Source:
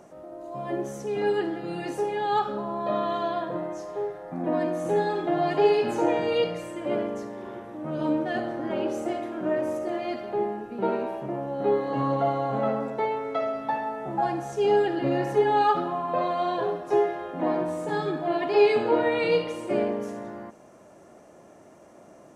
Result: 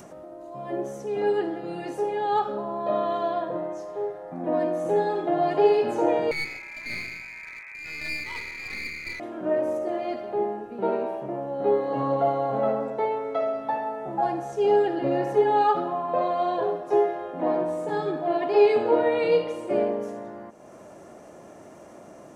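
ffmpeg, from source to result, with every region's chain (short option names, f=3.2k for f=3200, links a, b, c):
-filter_complex "[0:a]asettb=1/sr,asplit=3[a][b][c];[a]atrim=end=6.314[d];[b]atrim=start=6.31:end=9.2,asetpts=PTS-STARTPTS,afade=t=in:d=0.004:c=qsin,afade=t=out:st=2.886:d=0.004:c=qsin,lowpass=f=2.3k:t=q:w=0.5098,lowpass=f=2.3k:t=q:w=0.6013,lowpass=f=2.3k:t=q:w=0.9,lowpass=f=2.3k:t=q:w=2.563,afreqshift=-2700,aeval=exprs='clip(val(0),-1,0.0178)':c=same[e];[c]atrim=start=9.196[f];[d][e]acrossfade=d=0.004:c1=hsin:c2=qsin[g];[g][f]acrossfade=d=0.004:c1=qsin:c2=hsin,adynamicequalizer=threshold=0.0178:dfrequency=570:dqfactor=0.84:tfrequency=570:tqfactor=0.84:attack=5:release=100:ratio=0.375:range=3.5:mode=boostabove:tftype=bell,acompressor=mode=upward:threshold=-32dB:ratio=2.5,volume=-4dB"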